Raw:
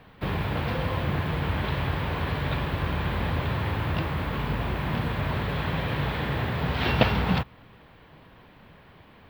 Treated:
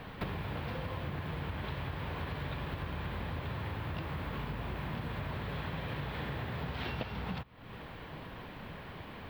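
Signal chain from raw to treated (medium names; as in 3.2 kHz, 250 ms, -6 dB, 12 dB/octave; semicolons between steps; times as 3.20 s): compression 12:1, threshold -41 dBFS, peak gain reduction 27 dB; trim +6 dB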